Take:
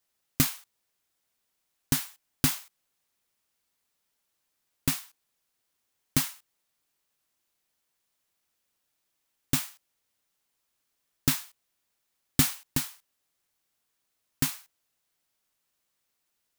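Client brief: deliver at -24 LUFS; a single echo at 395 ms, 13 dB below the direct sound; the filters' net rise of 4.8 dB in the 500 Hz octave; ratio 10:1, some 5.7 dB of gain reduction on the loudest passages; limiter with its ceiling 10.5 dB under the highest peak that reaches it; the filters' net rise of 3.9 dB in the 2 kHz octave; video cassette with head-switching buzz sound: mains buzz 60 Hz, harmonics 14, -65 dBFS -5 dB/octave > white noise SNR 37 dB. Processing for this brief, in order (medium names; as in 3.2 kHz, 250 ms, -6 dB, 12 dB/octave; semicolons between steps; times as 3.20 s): peaking EQ 500 Hz +6.5 dB; peaking EQ 2 kHz +4.5 dB; compression 10:1, threshold -25 dBFS; peak limiter -18.5 dBFS; delay 395 ms -13 dB; mains buzz 60 Hz, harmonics 14, -65 dBFS -5 dB/octave; white noise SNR 37 dB; trim +17 dB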